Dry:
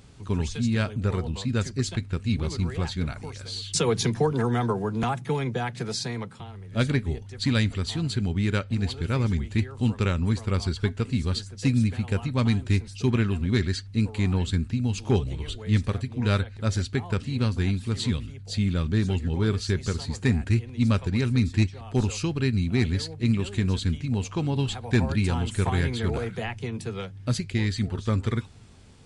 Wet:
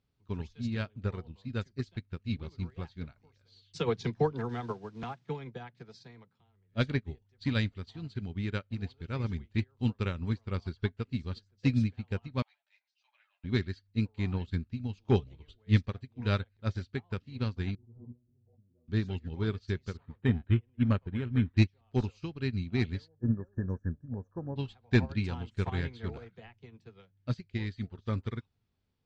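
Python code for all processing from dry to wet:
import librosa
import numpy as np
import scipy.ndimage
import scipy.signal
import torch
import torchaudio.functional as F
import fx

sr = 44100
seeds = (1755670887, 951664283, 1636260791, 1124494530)

y = fx.chain(x, sr, fx.low_shelf(hz=93.0, db=-4.0),
    fx.quant_dither(seeds[0], bits=8, dither='triangular'), at=(4.49, 5.29))
y = fx.chain(y, sr, fx.cheby_ripple_highpass(hz=580.0, ripple_db=6),
    fx.ensemble(), at=(12.42, 13.44))
y = fx.chain(y, sr, fx.steep_lowpass(hz=770.0, slope=36),
    fx.stiff_resonator(f0_hz=120.0, decay_s=0.32, stiffness=0.002),
    fx.pre_swell(db_per_s=26.0), at=(17.75, 18.88))
y = fx.chain(y, sr, fx.lowpass(hz=4200.0, slope=24),
    fx.resample_linear(factor=8), at=(19.97, 21.57))
y = fx.chain(y, sr, fx.brickwall_bandstop(low_hz=1800.0, high_hz=5500.0),
    fx.spacing_loss(db_at_10k=24),
    fx.small_body(hz=(540.0, 1700.0, 3000.0), ring_ms=25, db=8), at=(23.08, 24.56))
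y = scipy.signal.sosfilt(scipy.signal.butter(4, 5400.0, 'lowpass', fs=sr, output='sos'), y)
y = fx.upward_expand(y, sr, threshold_db=-36.0, expansion=2.5)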